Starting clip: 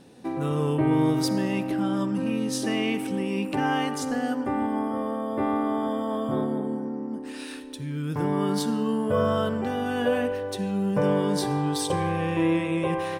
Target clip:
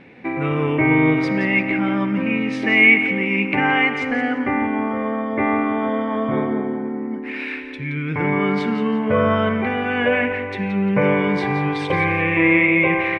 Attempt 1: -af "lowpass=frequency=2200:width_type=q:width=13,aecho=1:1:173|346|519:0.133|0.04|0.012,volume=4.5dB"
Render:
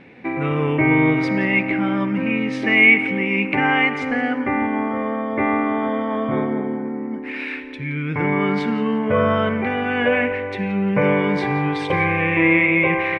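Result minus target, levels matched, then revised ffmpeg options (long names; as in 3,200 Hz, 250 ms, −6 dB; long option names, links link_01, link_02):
echo-to-direct −7 dB
-af "lowpass=frequency=2200:width_type=q:width=13,aecho=1:1:173|346|519:0.299|0.0896|0.0269,volume=4.5dB"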